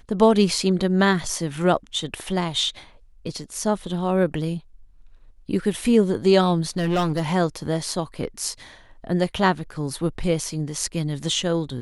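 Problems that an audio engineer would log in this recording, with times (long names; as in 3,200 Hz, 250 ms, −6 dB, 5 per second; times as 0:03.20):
0:06.77–0:07.22: clipping −17.5 dBFS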